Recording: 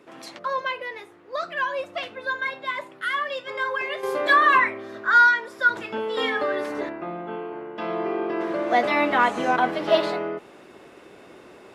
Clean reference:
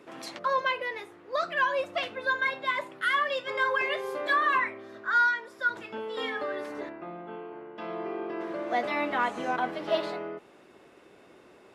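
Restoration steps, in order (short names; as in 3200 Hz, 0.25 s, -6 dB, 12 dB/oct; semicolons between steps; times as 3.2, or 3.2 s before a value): gain correction -8 dB, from 4.03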